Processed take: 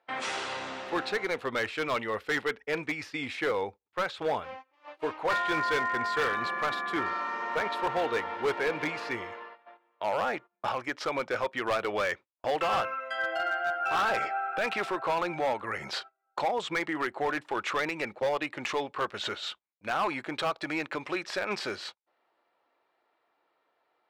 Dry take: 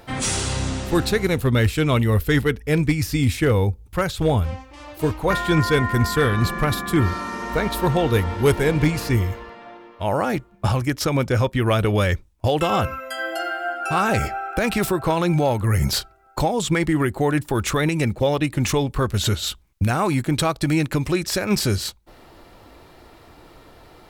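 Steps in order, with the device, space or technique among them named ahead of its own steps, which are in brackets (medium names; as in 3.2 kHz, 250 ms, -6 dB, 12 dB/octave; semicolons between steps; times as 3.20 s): walkie-talkie (band-pass 600–2700 Hz; hard clipper -21 dBFS, distortion -12 dB; gate -41 dBFS, range -20 dB); trim -2 dB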